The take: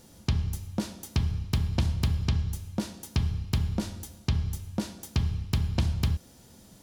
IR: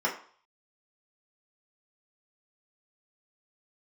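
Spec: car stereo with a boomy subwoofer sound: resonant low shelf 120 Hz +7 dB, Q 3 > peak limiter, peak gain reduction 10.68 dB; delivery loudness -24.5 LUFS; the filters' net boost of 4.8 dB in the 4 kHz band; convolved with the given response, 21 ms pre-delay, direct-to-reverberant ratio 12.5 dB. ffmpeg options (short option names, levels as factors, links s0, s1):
-filter_complex "[0:a]equalizer=f=4000:t=o:g=6,asplit=2[s0][s1];[1:a]atrim=start_sample=2205,adelay=21[s2];[s1][s2]afir=irnorm=-1:irlink=0,volume=0.0708[s3];[s0][s3]amix=inputs=2:normalize=0,lowshelf=f=120:t=q:w=3:g=7,volume=1.26,alimiter=limit=0.178:level=0:latency=1"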